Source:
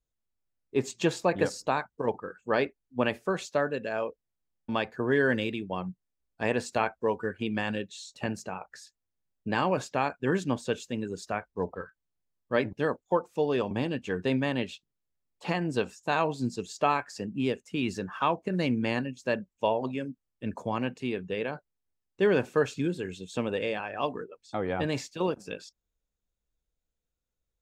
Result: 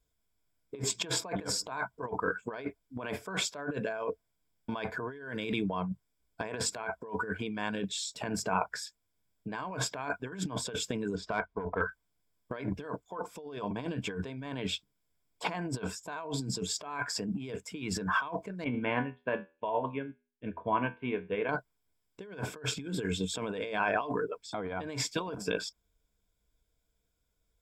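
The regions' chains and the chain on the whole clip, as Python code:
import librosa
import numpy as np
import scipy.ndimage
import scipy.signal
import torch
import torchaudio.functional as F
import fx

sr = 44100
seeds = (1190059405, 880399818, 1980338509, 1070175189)

y = fx.chain(x, sr, fx.lowpass(hz=3500.0, slope=12),
    fx.tube_stage(drive_db=24.0, bias=0.5), at=(11.15, 11.81))
y = fx.chain(y, sr, fx.steep_lowpass(hz=3200.0, slope=48),
    fx.comb_fb(f0_hz=82.0, decay_s=0.4, harmonics='all', damping=0.0, mix_pct=70),
    fx.upward_expand(threshold_db=-56.0, expansion=1.5), at=(18.64, 21.49))
y = fx.ripple_eq(y, sr, per_octave=1.7, db=9)
y = fx.over_compress(y, sr, threshold_db=-37.0, ratio=-1.0)
y = fx.dynamic_eq(y, sr, hz=1100.0, q=1.1, threshold_db=-53.0, ratio=4.0, max_db=6)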